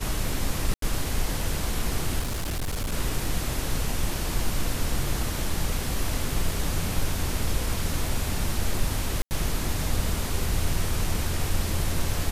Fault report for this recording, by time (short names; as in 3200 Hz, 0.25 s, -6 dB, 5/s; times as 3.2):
0.74–0.82 gap 83 ms
2.19–2.93 clipped -25 dBFS
9.22–9.31 gap 89 ms